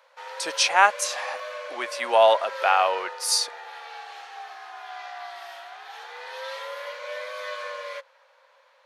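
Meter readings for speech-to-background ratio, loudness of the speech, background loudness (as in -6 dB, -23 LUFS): 14.5 dB, -22.0 LUFS, -36.5 LUFS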